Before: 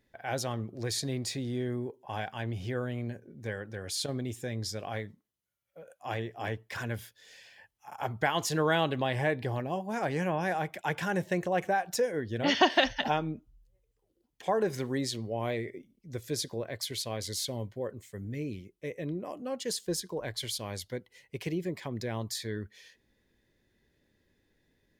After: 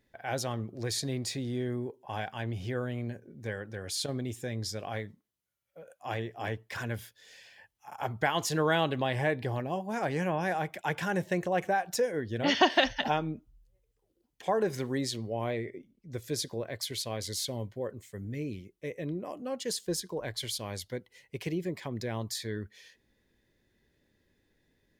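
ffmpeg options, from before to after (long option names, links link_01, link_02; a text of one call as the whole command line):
ffmpeg -i in.wav -filter_complex "[0:a]asettb=1/sr,asplit=3[link_01][link_02][link_03];[link_01]atrim=end=15.444[link_04];[link_02]atrim=start=15.44:end=16.14,asetpts=PTS-STARTPTS,afade=type=in:duration=0.004:curve=qsin,afade=type=out:start_time=0.696:duration=0.004:curve=qsin,highshelf=frequency=3900:gain=-7[link_05];[link_03]atrim=start=16.136[link_06];[link_04][link_05]acrossfade=duration=0.004:curve1=hsin:curve2=qsin[link_07];[link_07][link_06]acrossfade=duration=0.004:curve1=qsin:curve2=hsin" out.wav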